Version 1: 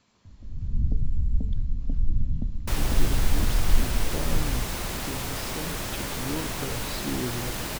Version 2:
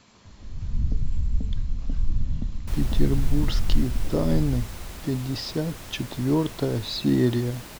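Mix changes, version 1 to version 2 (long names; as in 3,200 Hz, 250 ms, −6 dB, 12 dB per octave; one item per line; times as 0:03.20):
speech +10.5 dB
second sound −9.5 dB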